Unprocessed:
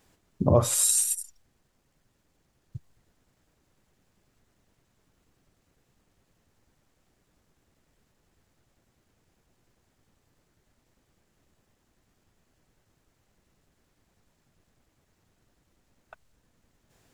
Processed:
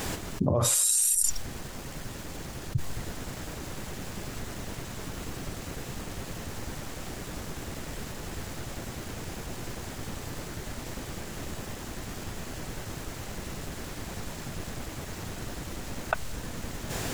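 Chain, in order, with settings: fast leveller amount 100%; gain -8 dB

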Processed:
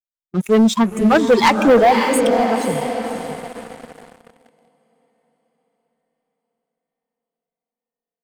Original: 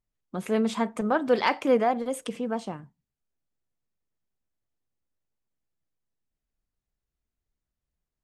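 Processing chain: per-bin expansion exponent 2; diffused feedback echo 0.547 s, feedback 46%, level -8 dB; sample leveller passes 3; gain +6.5 dB

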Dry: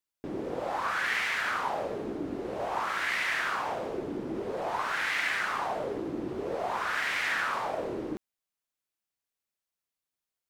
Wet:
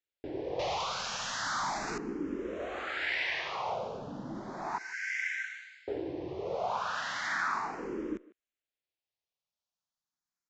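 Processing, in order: 0.59–1.98 infinite clipping; 4.78–5.88 rippled Chebyshev high-pass 1500 Hz, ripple 9 dB; speakerphone echo 0.15 s, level -19 dB; downsampling 16000 Hz; endless phaser +0.35 Hz

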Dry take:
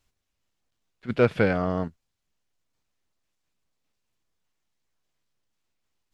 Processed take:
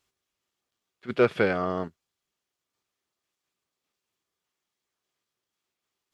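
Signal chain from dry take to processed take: HPF 140 Hz 6 dB/oct; low shelf 430 Hz -4.5 dB; small resonant body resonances 380/1200/3300 Hz, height 7 dB

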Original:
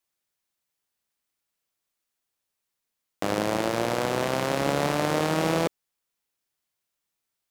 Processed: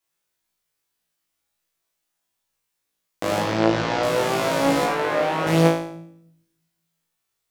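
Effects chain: 3.39–4.03 LPF 5700 Hz 24 dB/oct; 4.84–5.47 tone controls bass -10 dB, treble -14 dB; on a send: flutter echo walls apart 3.1 m, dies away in 0.57 s; on the sum: shoebox room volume 1900 m³, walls furnished, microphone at 0.68 m

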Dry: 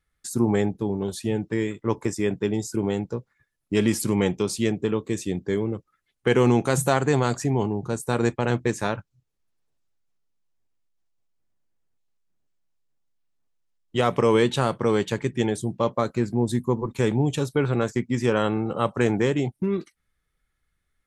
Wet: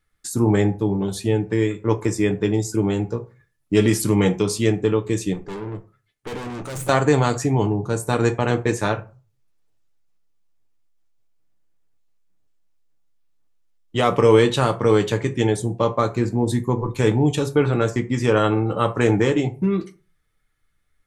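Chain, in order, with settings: 5.33–6.89 tube stage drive 32 dB, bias 0.6; on a send: reverb RT60 0.35 s, pre-delay 3 ms, DRR 5.5 dB; on the sum: gain +3 dB

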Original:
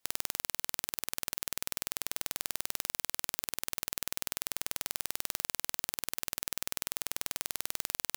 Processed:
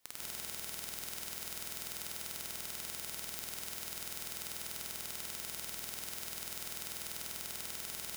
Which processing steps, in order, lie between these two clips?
soft clip -19 dBFS, distortion -28 dB; non-linear reverb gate 0.21 s rising, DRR -4.5 dB; gain +4 dB

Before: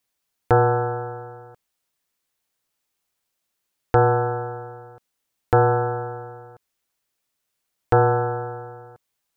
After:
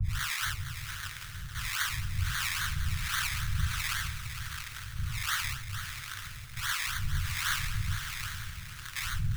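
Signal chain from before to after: switching spikes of -11 dBFS; graphic EQ 125/250/500/2000 Hz -11/-6/-3/-7 dB; Schroeder reverb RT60 3.4 s, combs from 28 ms, DRR 14.5 dB; in parallel at -4.5 dB: wavefolder -23.5 dBFS; on the sum: decimation with a swept rate 24×, swing 60% 3.7 Hz; elliptic band-stop 120–1500 Hz, stop band 50 dB; high shelf 2100 Hz -3.5 dB; notches 60/120 Hz; harmonic tremolo 1.4 Hz, depth 100%, crossover 400 Hz; on a send: diffused feedback echo 0.766 s, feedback 41%, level -15.5 dB; on the sum: lo-fi delay 0.457 s, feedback 55%, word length 7-bit, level -9 dB; gain -6.5 dB

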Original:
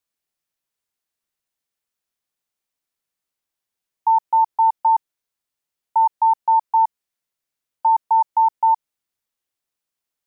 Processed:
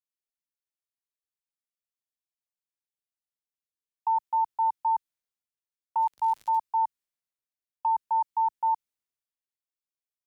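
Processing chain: dynamic EQ 690 Hz, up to -6 dB, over -29 dBFS, Q 0.89; 6–6.56 crackle 94/s -33 dBFS; three-band expander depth 40%; gain -4.5 dB

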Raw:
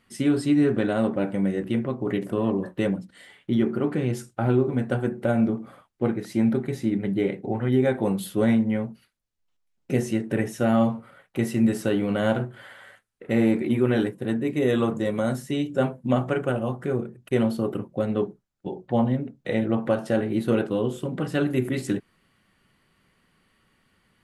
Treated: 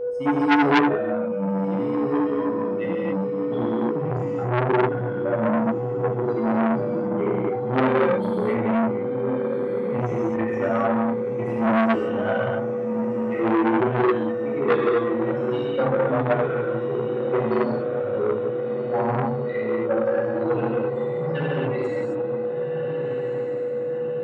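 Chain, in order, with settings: per-bin expansion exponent 3; BPF 140–2300 Hz; low shelf 360 Hz +3 dB; on a send: diffused feedback echo 1.501 s, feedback 59%, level -9 dB; on the sum: whine 490 Hz -33 dBFS; notches 50/100/150/200/250/300/350 Hz; non-linear reverb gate 0.3 s flat, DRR -6.5 dB; core saturation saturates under 1800 Hz; gain +4 dB

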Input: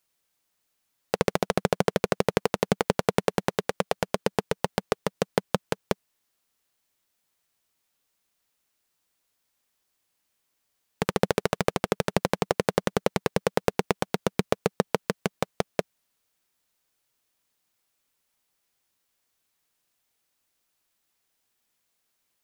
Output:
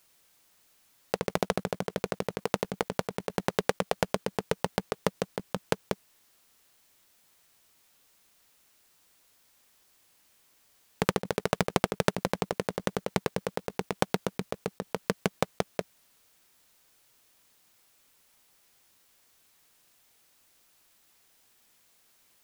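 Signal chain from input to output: negative-ratio compressor -28 dBFS, ratio -0.5; gain +3.5 dB

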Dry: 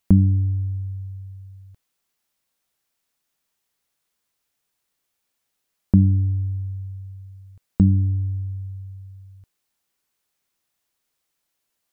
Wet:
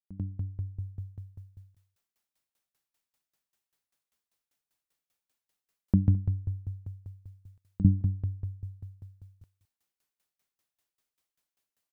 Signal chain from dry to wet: opening faded in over 0.99 s; echo 0.213 s -20 dB; dB-ramp tremolo decaying 5.1 Hz, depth 22 dB

